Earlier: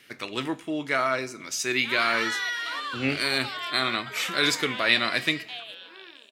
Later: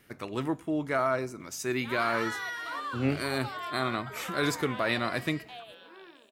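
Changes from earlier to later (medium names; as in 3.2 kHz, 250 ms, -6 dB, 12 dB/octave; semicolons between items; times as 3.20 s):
speech: send -7.5 dB; master: remove frequency weighting D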